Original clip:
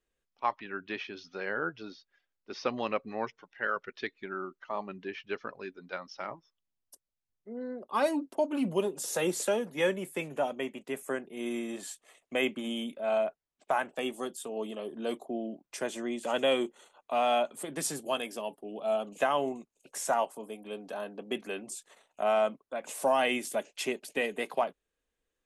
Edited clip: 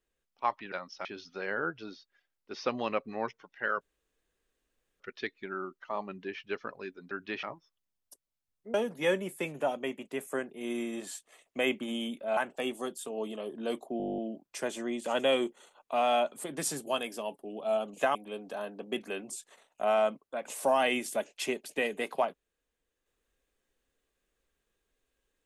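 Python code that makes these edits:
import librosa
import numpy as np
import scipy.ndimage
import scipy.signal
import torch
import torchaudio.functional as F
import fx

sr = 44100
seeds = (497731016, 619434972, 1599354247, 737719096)

y = fx.edit(x, sr, fx.swap(start_s=0.72, length_s=0.32, other_s=5.91, other_length_s=0.33),
    fx.insert_room_tone(at_s=3.8, length_s=1.19),
    fx.cut(start_s=7.55, length_s=1.95),
    fx.cut(start_s=13.13, length_s=0.63),
    fx.stutter(start_s=15.37, slice_s=0.02, count=11),
    fx.cut(start_s=19.34, length_s=1.2), tone=tone)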